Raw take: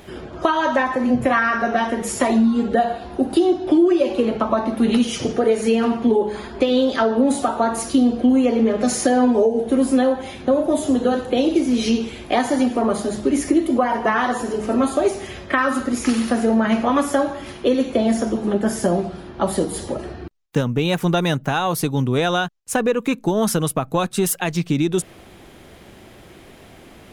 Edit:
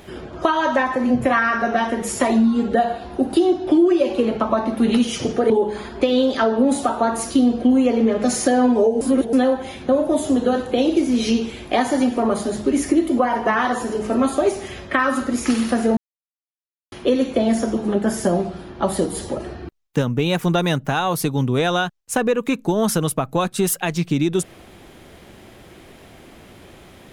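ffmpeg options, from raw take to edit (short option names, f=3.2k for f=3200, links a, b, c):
-filter_complex "[0:a]asplit=6[a][b][c][d][e][f];[a]atrim=end=5.502[g];[b]atrim=start=6.088:end=9.602[h];[c]atrim=start=9.598:end=9.922,asetpts=PTS-STARTPTS,areverse[i];[d]atrim=start=9.918:end=16.56,asetpts=PTS-STARTPTS,afade=t=out:st=6.638:d=0.004:c=hsin[j];[e]atrim=start=16.56:end=17.51,asetpts=PTS-STARTPTS,volume=0[k];[f]atrim=start=17.51,asetpts=PTS-STARTPTS,afade=t=in:d=0.004:c=hsin[l];[g][h]acrossfade=d=0.004:c1=hsin:c2=hsin[m];[m][i]acrossfade=d=0.004:c1=hsin:c2=hsin[n];[j][k][l]concat=n=3:v=0:a=1[o];[n][o]acrossfade=d=0.004:c1=hsin:c2=hsin"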